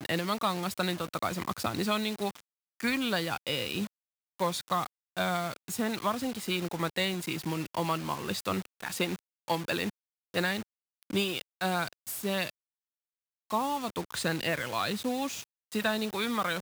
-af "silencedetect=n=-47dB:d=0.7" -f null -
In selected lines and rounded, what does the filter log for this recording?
silence_start: 12.50
silence_end: 13.50 | silence_duration: 1.00